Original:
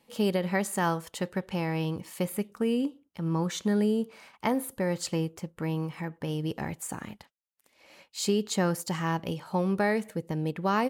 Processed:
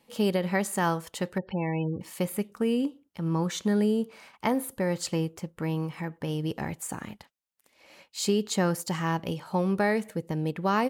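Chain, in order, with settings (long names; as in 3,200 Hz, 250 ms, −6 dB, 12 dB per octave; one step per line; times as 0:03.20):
0:01.38–0:02.01: gate on every frequency bin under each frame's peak −20 dB strong
level +1 dB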